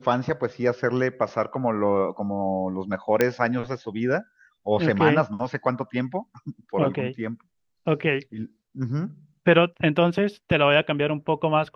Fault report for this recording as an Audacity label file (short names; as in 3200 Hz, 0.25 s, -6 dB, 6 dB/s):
3.210000	3.210000	pop -6 dBFS